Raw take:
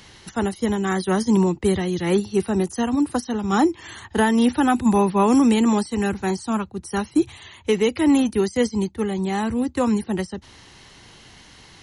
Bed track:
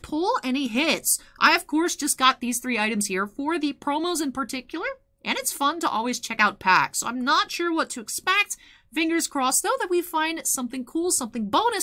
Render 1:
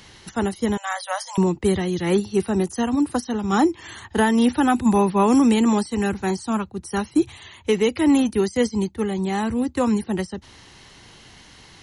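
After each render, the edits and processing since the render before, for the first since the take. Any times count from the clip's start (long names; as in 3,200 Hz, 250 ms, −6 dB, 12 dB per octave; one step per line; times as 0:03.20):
0:00.77–0:01.38: linear-phase brick-wall high-pass 520 Hz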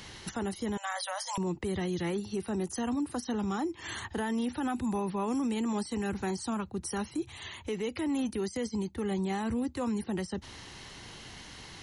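downward compressor 6 to 1, threshold −26 dBFS, peak gain reduction 12.5 dB
brickwall limiter −25 dBFS, peak gain reduction 9.5 dB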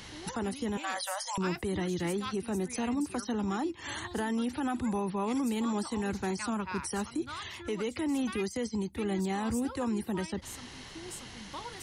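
mix in bed track −21.5 dB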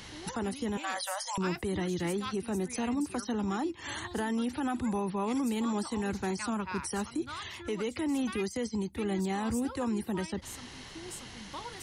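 no processing that can be heard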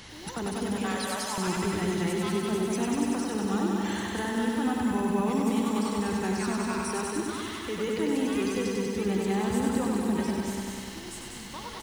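loudspeakers that aren't time-aligned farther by 65 metres −7 dB, 84 metres −9 dB
feedback echo at a low word length 97 ms, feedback 80%, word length 9 bits, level −3.5 dB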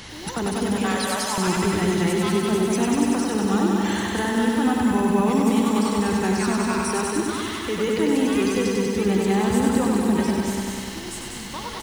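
level +7 dB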